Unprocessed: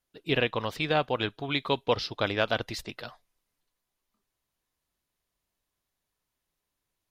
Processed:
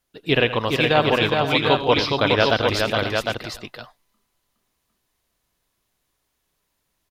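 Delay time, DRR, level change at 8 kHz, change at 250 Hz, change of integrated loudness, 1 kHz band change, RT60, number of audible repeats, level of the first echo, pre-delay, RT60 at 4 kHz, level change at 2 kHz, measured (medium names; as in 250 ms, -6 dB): 85 ms, no reverb, +10.0 dB, +10.0 dB, +9.5 dB, +10.0 dB, no reverb, 5, -14.5 dB, no reverb, no reverb, +10.0 dB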